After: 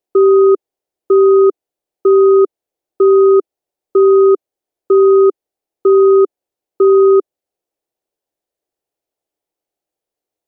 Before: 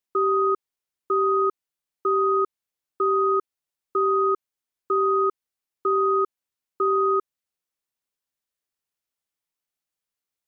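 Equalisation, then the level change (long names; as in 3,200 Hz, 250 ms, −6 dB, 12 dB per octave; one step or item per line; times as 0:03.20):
low-shelf EQ 370 Hz +5 dB
flat-topped bell 500 Hz +13.5 dB
0.0 dB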